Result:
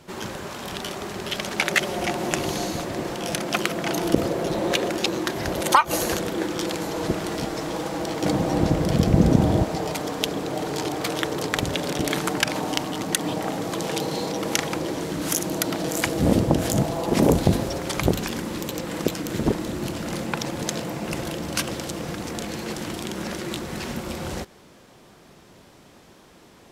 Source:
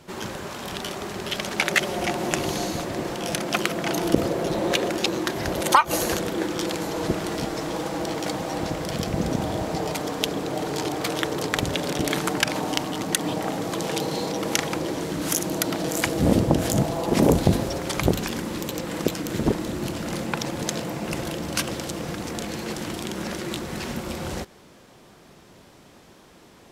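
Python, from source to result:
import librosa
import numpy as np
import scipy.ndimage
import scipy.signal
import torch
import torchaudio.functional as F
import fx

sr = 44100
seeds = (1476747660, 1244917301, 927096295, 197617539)

y = fx.low_shelf(x, sr, hz=460.0, db=11.0, at=(8.22, 9.64))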